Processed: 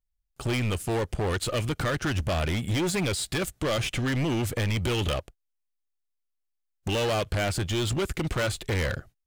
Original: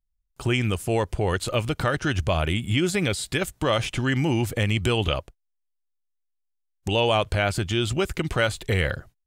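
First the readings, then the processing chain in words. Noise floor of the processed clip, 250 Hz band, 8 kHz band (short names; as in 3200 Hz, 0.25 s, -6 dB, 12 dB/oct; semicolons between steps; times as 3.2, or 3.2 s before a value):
-79 dBFS, -3.0 dB, +0.5 dB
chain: in parallel at -1.5 dB: crossover distortion -37 dBFS; on the sum: notch 970 Hz, Q 6.5; hard clip -20.5 dBFS, distortion -6 dB; gain -3 dB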